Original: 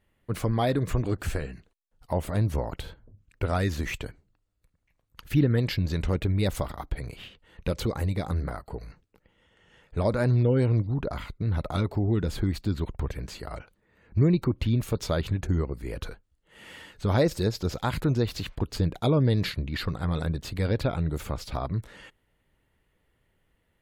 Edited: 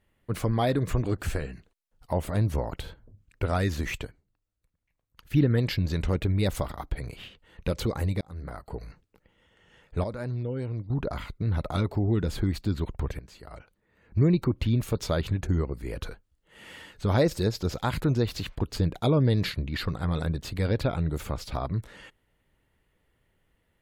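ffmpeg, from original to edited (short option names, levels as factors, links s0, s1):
-filter_complex "[0:a]asplit=7[s0][s1][s2][s3][s4][s5][s6];[s0]atrim=end=4.062[s7];[s1]atrim=start=4.058:end=5.342,asetpts=PTS-STARTPTS,volume=0.447[s8];[s2]atrim=start=5.338:end=8.21,asetpts=PTS-STARTPTS,afade=t=out:st=2.868:d=0.004:c=hsin[s9];[s3]atrim=start=8.21:end=10.042,asetpts=PTS-STARTPTS,afade=t=in:d=0.52[s10];[s4]atrim=start=10.038:end=10.902,asetpts=PTS-STARTPTS,volume=0.335[s11];[s5]atrim=start=10.898:end=13.19,asetpts=PTS-STARTPTS,afade=t=out:st=2.288:d=0.004:c=hsin:silence=0.211349[s12];[s6]atrim=start=13.19,asetpts=PTS-STARTPTS,afade=t=in:d=1.11:silence=0.211349[s13];[s7][s8]acrossfade=d=0.004:c1=hsin:c2=hsin[s14];[s9][s10]concat=n=2:v=0:a=1[s15];[s14][s15]acrossfade=d=0.004:c1=hsin:c2=hsin[s16];[s16][s11]acrossfade=d=0.004:c1=hsin:c2=hsin[s17];[s12][s13]concat=n=2:v=0:a=1[s18];[s17][s18]acrossfade=d=0.004:c1=hsin:c2=hsin"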